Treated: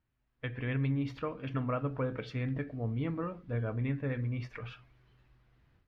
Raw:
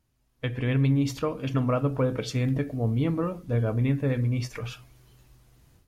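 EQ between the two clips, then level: air absorption 350 m; bell 1700 Hz +6.5 dB 1.3 oct; high shelf 3500 Hz +8.5 dB; -8.5 dB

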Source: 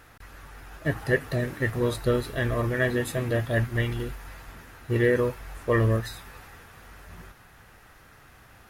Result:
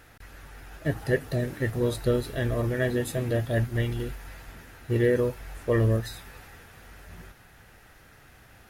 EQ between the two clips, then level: bell 1100 Hz -6 dB 0.5 oct; dynamic EQ 2000 Hz, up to -5 dB, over -41 dBFS, Q 1.1; 0.0 dB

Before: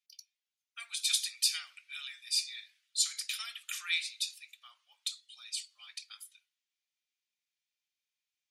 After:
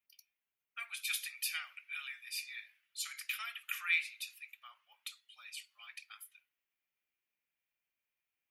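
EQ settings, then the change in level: band shelf 5700 Hz -16 dB; +3.5 dB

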